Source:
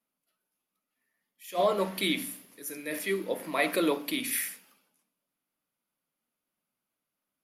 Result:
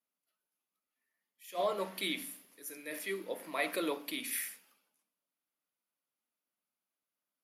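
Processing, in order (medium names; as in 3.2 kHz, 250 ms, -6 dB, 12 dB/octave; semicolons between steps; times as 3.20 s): high-pass 330 Hz 6 dB/octave; trim -6 dB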